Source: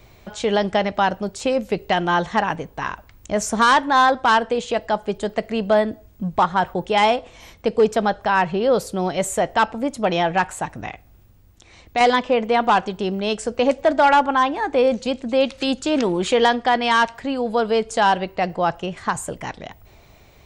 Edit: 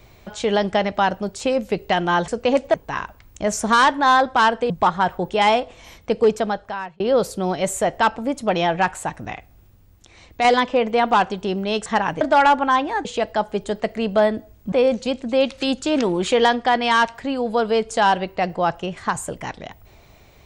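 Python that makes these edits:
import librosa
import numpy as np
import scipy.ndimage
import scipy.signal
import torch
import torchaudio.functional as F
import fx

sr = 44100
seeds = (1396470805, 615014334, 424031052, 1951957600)

y = fx.edit(x, sr, fx.swap(start_s=2.28, length_s=0.35, other_s=13.42, other_length_s=0.46),
    fx.move(start_s=4.59, length_s=1.67, to_s=14.72),
    fx.fade_out_span(start_s=7.81, length_s=0.75), tone=tone)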